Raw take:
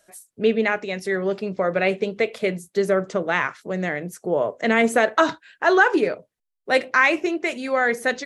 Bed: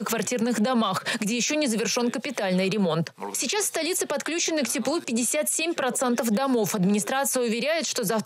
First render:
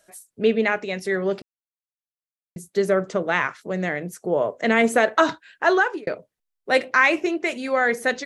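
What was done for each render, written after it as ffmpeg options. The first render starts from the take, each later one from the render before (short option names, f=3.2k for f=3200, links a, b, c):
-filter_complex "[0:a]asplit=4[a][b][c][d];[a]atrim=end=1.42,asetpts=PTS-STARTPTS,afade=t=out:st=1.416:d=0.004:c=hsin[e];[b]atrim=start=1.42:end=2.56,asetpts=PTS-STARTPTS,volume=0[f];[c]atrim=start=2.56:end=6.07,asetpts=PTS-STARTPTS,afade=t=in:d=0.004:c=hsin,afade=t=out:st=3.11:d=0.4[g];[d]atrim=start=6.07,asetpts=PTS-STARTPTS,afade=t=in:d=0.004:c=hsin[h];[e][f][g][h]concat=n=4:v=0:a=1"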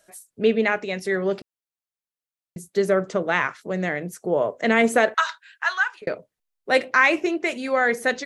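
-filter_complex "[0:a]asettb=1/sr,asplit=3[a][b][c];[a]atrim=end=5.144[d];[b]atrim=start=5.14:end=6.02,asetpts=PTS-STARTPTS,afade=t=in:d=0.004:c=qsin,afade=t=out:st=0.876:d=0.004:c=qsin,highpass=f=1.1k:w=0.5412,highpass=f=1.1k:w=1.3066[e];[c]atrim=start=6.016[f];[d][e]acrossfade=d=0.004:c1=hsin:c2=qsin[g];[g][f]acrossfade=d=0.004:c1=qsin:c2=hsin"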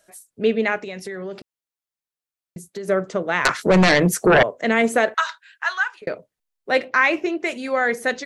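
-filter_complex "[0:a]asettb=1/sr,asplit=3[a][b][c];[a]atrim=end=0.774[d];[b]atrim=start=0.77:end=2.88,asetpts=PTS-STARTPTS,afade=t=in:d=0.004:c=qsin,afade=t=out:st=2.106:d=0.004:c=qsin,acompressor=threshold=-27dB:ratio=10:attack=3.2:release=140:knee=1:detection=peak[e];[c]atrim=start=2.876[f];[d][e]acrossfade=d=0.004:c1=hsin:c2=qsin[g];[g][f]acrossfade=d=0.004:c1=qsin:c2=hsin,asettb=1/sr,asplit=3[h][i][j];[h]atrim=end=3.454[k];[i]atrim=start=3.45:end=4.43,asetpts=PTS-STARTPTS,afade=t=in:d=0.004:c=qsin,afade=t=out:st=0.976:d=0.004:c=qsin,aeval=exprs='0.335*sin(PI/2*3.98*val(0)/0.335)':c=same[l];[j]atrim=start=4.426[m];[k][l]acrossfade=d=0.004:c1=hsin:c2=qsin[n];[n][m]acrossfade=d=0.004:c1=qsin:c2=hsin,asettb=1/sr,asplit=3[o][p][q];[o]atrim=end=6.714[r];[p]atrim=start=6.71:end=7.39,asetpts=PTS-STARTPTS,afade=t=in:d=0.004:c=qsin,afade=t=out:st=0.676:d=0.004:c=qsin,equalizer=f=9.1k:t=o:w=0.77:g=-10[s];[q]atrim=start=7.386[t];[r][s]acrossfade=d=0.004:c1=hsin:c2=qsin[u];[u][t]acrossfade=d=0.004:c1=qsin:c2=hsin"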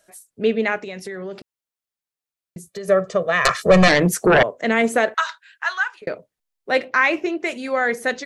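-filter_complex "[0:a]asettb=1/sr,asplit=3[a][b][c];[a]atrim=end=2.674[d];[b]atrim=start=2.67:end=3.88,asetpts=PTS-STARTPTS,afade=t=in:d=0.004:c=qsin,afade=t=out:st=1.206:d=0.004:c=qsin,aecho=1:1:1.7:0.85,atrim=end_sample=53361[e];[c]atrim=start=3.876[f];[d][e]acrossfade=d=0.004:c1=hsin:c2=qsin[g];[g][f]acrossfade=d=0.004:c1=qsin:c2=hsin"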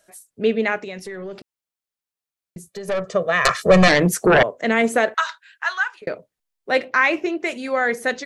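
-filter_complex "[0:a]asettb=1/sr,asplit=3[a][b][c];[a]atrim=end=0.984[d];[b]atrim=start=0.98:end=3.09,asetpts=PTS-STARTPTS,afade=t=in:d=0.004:c=qsin,afade=t=out:st=2.106:d=0.004:c=qsin,aeval=exprs='(tanh(8.91*val(0)+0.3)-tanh(0.3))/8.91':c=same[e];[c]atrim=start=3.086[f];[d][e]acrossfade=d=0.004:c1=hsin:c2=qsin[g];[g][f]acrossfade=d=0.004:c1=qsin:c2=hsin"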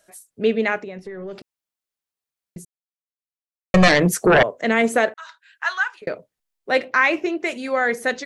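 -filter_complex "[0:a]asplit=3[a][b][c];[a]afade=t=out:st=0.82:d=0.02[d];[b]lowpass=f=1.1k:p=1,afade=t=in:st=0.82:d=0.02,afade=t=out:st=1.27:d=0.02[e];[c]afade=t=in:st=1.27:d=0.02[f];[d][e][f]amix=inputs=3:normalize=0,asplit=4[g][h][i][j];[g]atrim=end=2.65,asetpts=PTS-STARTPTS,afade=t=out:st=2.646:d=0.004:c=hsin[k];[h]atrim=start=2.65:end=3.74,asetpts=PTS-STARTPTS,volume=0[l];[i]atrim=start=3.74:end=5.14,asetpts=PTS-STARTPTS,afade=t=in:d=0.004:c=hsin,afade=t=out:st=1.396:d=0.004:c=hsin[m];[j]atrim=start=5.14,asetpts=PTS-STARTPTS,afade=t=in:d=0.52[n];[k][l][m][n]concat=n=4:v=0:a=1"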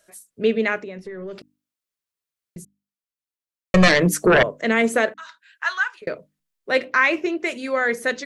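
-af "equalizer=f=780:t=o:w=0.35:g=-6.5,bandreject=f=50:t=h:w=6,bandreject=f=100:t=h:w=6,bandreject=f=150:t=h:w=6,bandreject=f=200:t=h:w=6,bandreject=f=250:t=h:w=6,bandreject=f=300:t=h:w=6"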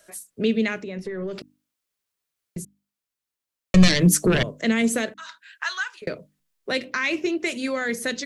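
-filter_complex "[0:a]asplit=2[a][b];[b]alimiter=limit=-11.5dB:level=0:latency=1:release=177,volume=-1.5dB[c];[a][c]amix=inputs=2:normalize=0,acrossover=split=280|3000[d][e][f];[e]acompressor=threshold=-32dB:ratio=3[g];[d][g][f]amix=inputs=3:normalize=0"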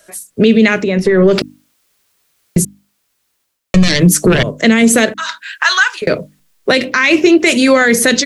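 -af "dynaudnorm=f=200:g=3:m=14dB,alimiter=level_in=8dB:limit=-1dB:release=50:level=0:latency=1"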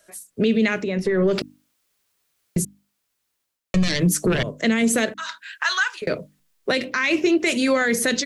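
-af "volume=-10dB"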